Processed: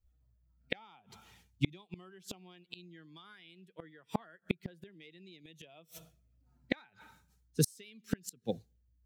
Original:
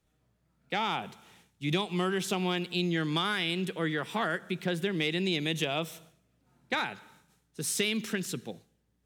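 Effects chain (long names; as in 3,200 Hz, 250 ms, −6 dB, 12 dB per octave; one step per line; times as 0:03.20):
spectral dynamics exaggerated over time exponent 1.5
gate with flip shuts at −29 dBFS, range −37 dB
level +14.5 dB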